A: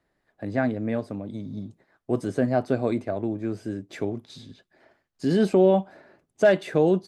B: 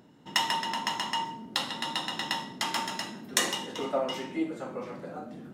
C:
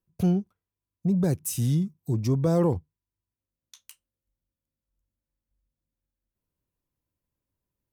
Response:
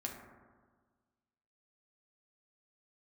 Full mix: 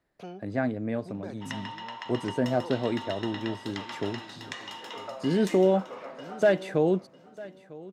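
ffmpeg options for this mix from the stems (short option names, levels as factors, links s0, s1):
-filter_complex "[0:a]volume=0.668,asplit=2[s0][s1];[s1]volume=0.1[s2];[1:a]equalizer=f=10000:t=o:w=0.44:g=-4,adelay=1150,volume=1.19,asplit=2[s3][s4];[s4]volume=0.133[s5];[2:a]volume=0.794[s6];[s3][s6]amix=inputs=2:normalize=0,highpass=610,lowpass=3500,acompressor=threshold=0.0158:ratio=12,volume=1[s7];[s2][s5]amix=inputs=2:normalize=0,aecho=0:1:950|1900|2850:1|0.2|0.04[s8];[s0][s7][s8]amix=inputs=3:normalize=0"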